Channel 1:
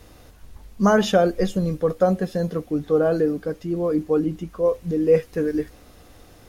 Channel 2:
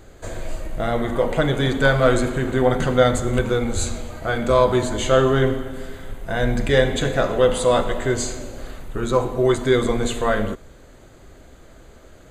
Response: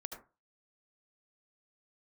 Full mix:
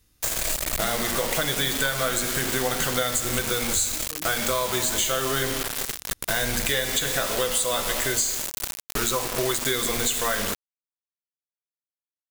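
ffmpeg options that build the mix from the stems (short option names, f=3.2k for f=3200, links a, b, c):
-filter_complex "[0:a]equalizer=f=620:w=0.99:g=-13.5,volume=-16dB[a];[1:a]tiltshelf=f=970:g=-7,acompressor=threshold=-25dB:ratio=1.5,acrusher=bits=4:mix=0:aa=0.000001,volume=3dB[b];[a][b]amix=inputs=2:normalize=0,highshelf=f=4.7k:g=9.5,acompressor=threshold=-21dB:ratio=6"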